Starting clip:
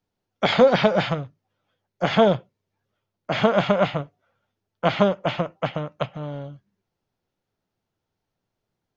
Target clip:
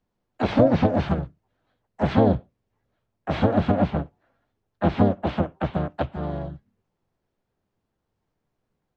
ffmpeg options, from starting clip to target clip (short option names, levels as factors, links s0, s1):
-filter_complex "[0:a]acrossover=split=450[s0][s1];[s1]acompressor=threshold=0.0355:ratio=8[s2];[s0][s2]amix=inputs=2:normalize=0,highshelf=f=2700:g=-9,asplit=4[s3][s4][s5][s6];[s4]asetrate=22050,aresample=44100,atempo=2,volume=0.794[s7];[s5]asetrate=52444,aresample=44100,atempo=0.840896,volume=0.794[s8];[s6]asetrate=58866,aresample=44100,atempo=0.749154,volume=0.316[s9];[s3][s7][s8][s9]amix=inputs=4:normalize=0"